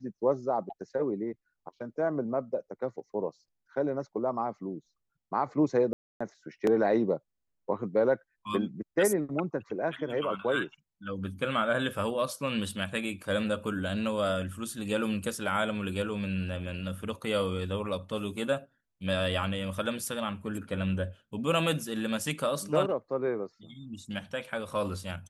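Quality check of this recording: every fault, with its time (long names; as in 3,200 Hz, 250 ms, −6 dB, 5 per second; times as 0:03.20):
0:05.93–0:06.21: drop-out 275 ms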